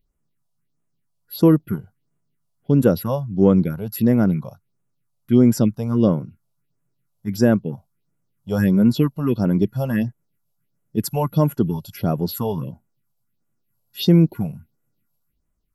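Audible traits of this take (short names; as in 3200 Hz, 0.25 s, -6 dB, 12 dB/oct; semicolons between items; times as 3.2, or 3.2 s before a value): phasing stages 4, 1.5 Hz, lowest notch 290–4400 Hz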